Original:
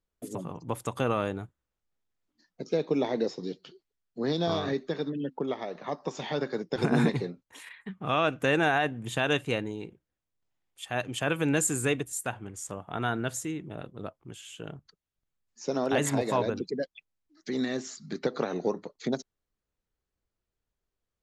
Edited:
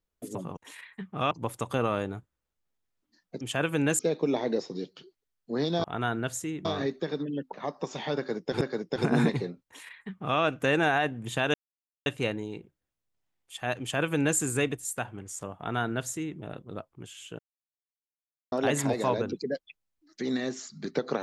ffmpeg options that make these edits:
ffmpeg -i in.wav -filter_complex "[0:a]asplit=12[link_01][link_02][link_03][link_04][link_05][link_06][link_07][link_08][link_09][link_10][link_11][link_12];[link_01]atrim=end=0.572[link_13];[link_02]atrim=start=7.448:end=8.192[link_14];[link_03]atrim=start=0.568:end=2.672[link_15];[link_04]atrim=start=11.078:end=11.662[link_16];[link_05]atrim=start=2.668:end=4.522[link_17];[link_06]atrim=start=12.848:end=13.662[link_18];[link_07]atrim=start=4.518:end=5.402[link_19];[link_08]atrim=start=5.768:end=6.852[link_20];[link_09]atrim=start=6.408:end=9.34,asetpts=PTS-STARTPTS,afade=type=out:start_time=2.928:duration=0.004:curve=hsin,apad=pad_dur=0.52[link_21];[link_10]atrim=start=9.34:end=14.67,asetpts=PTS-STARTPTS,afade=type=in:duration=0.004:curve=hsin,afade=type=out:start_time=5.326:duration=0.004:curve=hsin[link_22];[link_11]atrim=start=14.67:end=15.8,asetpts=PTS-STARTPTS,volume=0[link_23];[link_12]atrim=start=15.8,asetpts=PTS-STARTPTS,afade=type=in:duration=0.004:curve=hsin[link_24];[link_13][link_14]acrossfade=duration=0.004:curve1=hsin:curve2=hsin[link_25];[link_25][link_15]acrossfade=duration=0.004:curve1=hsin:curve2=hsin[link_26];[link_26][link_16]acrossfade=duration=0.004:curve1=hsin:curve2=hsin[link_27];[link_27][link_17]acrossfade=duration=0.004:curve1=hsin:curve2=hsin[link_28];[link_28][link_18]acrossfade=duration=0.004:curve1=hsin:curve2=hsin[link_29];[link_29][link_19]acrossfade=duration=0.004:curve1=hsin:curve2=hsin[link_30];[link_30][link_20]acrossfade=duration=0.004:curve1=hsin:curve2=hsin[link_31];[link_21][link_22][link_23][link_24]concat=n=4:v=0:a=1[link_32];[link_31][link_32]acrossfade=duration=0.004:curve1=hsin:curve2=hsin" out.wav

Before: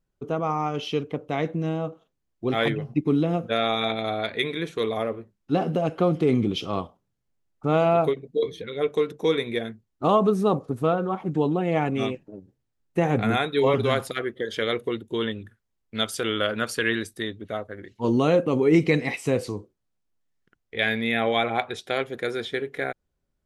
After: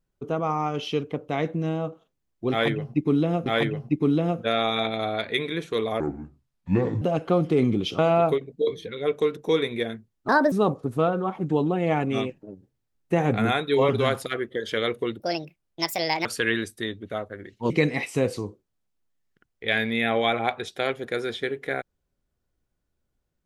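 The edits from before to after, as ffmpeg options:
ffmpeg -i in.wav -filter_complex "[0:a]asplit=10[link_01][link_02][link_03][link_04][link_05][link_06][link_07][link_08][link_09][link_10];[link_01]atrim=end=3.462[link_11];[link_02]atrim=start=2.508:end=5.054[link_12];[link_03]atrim=start=5.05:end=5.72,asetpts=PTS-STARTPTS,asetrate=29106,aresample=44100,atrim=end_sample=44768,asetpts=PTS-STARTPTS[link_13];[link_04]atrim=start=5.716:end=6.692[link_14];[link_05]atrim=start=7.738:end=10.044[link_15];[link_06]atrim=start=10.04:end=10.37,asetpts=PTS-STARTPTS,asetrate=62181,aresample=44100,atrim=end_sample=10321,asetpts=PTS-STARTPTS[link_16];[link_07]atrim=start=10.366:end=15.054[link_17];[link_08]atrim=start=15.05:end=16.64,asetpts=PTS-STARTPTS,asetrate=66591,aresample=44100,atrim=end_sample=46436,asetpts=PTS-STARTPTS[link_18];[link_09]atrim=start=16.636:end=18.092[link_19];[link_10]atrim=start=18.808[link_20];[link_11][link_12]acrossfade=duration=0.004:curve1=hsin:curve2=hsin[link_21];[link_21][link_13]acrossfade=duration=0.004:curve1=hsin:curve2=hsin[link_22];[link_22][link_14]acrossfade=duration=0.004:curve1=hsin:curve2=hsin[link_23];[link_23][link_15]acrossfade=duration=0.004:curve1=hsin:curve2=hsin[link_24];[link_24][link_16]acrossfade=duration=0.004:curve1=hsin:curve2=hsin[link_25];[link_25][link_17]acrossfade=duration=0.004:curve1=hsin:curve2=hsin[link_26];[link_26][link_18]acrossfade=duration=0.004:curve1=hsin:curve2=hsin[link_27];[link_27][link_19]acrossfade=duration=0.004:curve1=hsin:curve2=hsin[link_28];[link_28][link_20]acrossfade=duration=0.004:curve1=hsin:curve2=hsin" out.wav

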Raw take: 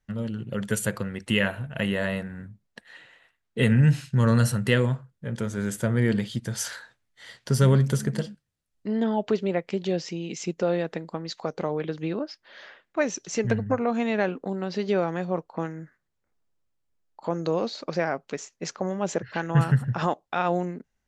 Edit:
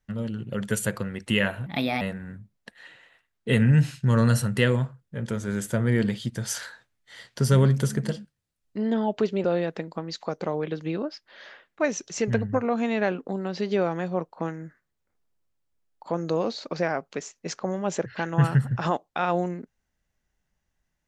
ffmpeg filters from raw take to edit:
ffmpeg -i in.wav -filter_complex "[0:a]asplit=4[link_01][link_02][link_03][link_04];[link_01]atrim=end=1.664[link_05];[link_02]atrim=start=1.66:end=2.11,asetpts=PTS-STARTPTS,asetrate=56448,aresample=44100[link_06];[link_03]atrim=start=2.106:end=9.542[link_07];[link_04]atrim=start=10.608[link_08];[link_05][link_06]acrossfade=duration=0.004:curve1=hsin:curve2=hsin[link_09];[link_09][link_07]acrossfade=duration=0.004:curve1=hsin:curve2=hsin[link_10];[link_10][link_08]acrossfade=duration=0.004:curve1=hsin:curve2=hsin" out.wav

